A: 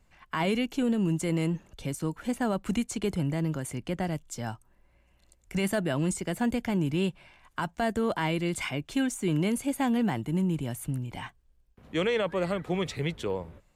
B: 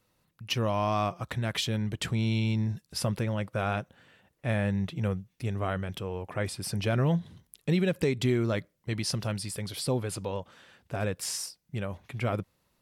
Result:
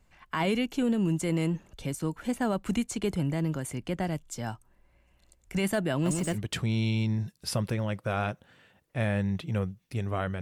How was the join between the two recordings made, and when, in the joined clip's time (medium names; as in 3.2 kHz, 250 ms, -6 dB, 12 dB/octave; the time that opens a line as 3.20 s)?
A
5.93–6.39 s: bit-crushed delay 126 ms, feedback 35%, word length 8-bit, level -4 dB
6.35 s: go over to B from 1.84 s, crossfade 0.08 s